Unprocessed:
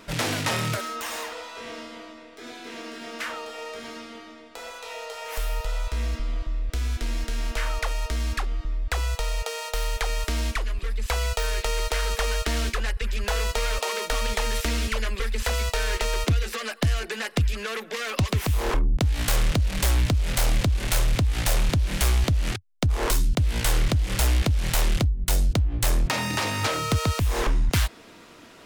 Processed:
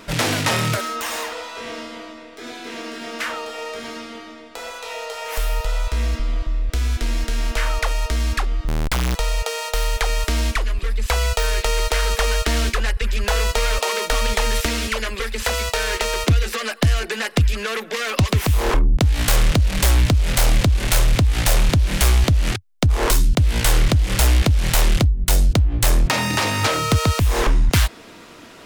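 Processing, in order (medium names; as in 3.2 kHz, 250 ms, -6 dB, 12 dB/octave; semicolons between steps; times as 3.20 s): 8.68–9.15 s: Schmitt trigger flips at -36.5 dBFS; 14.66–16.27 s: bass shelf 100 Hz -9.5 dB; trim +6 dB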